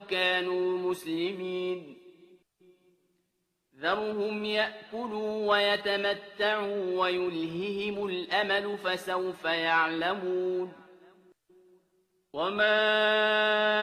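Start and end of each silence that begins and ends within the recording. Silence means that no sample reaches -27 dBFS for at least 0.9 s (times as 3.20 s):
1.74–3.84 s
10.63–12.38 s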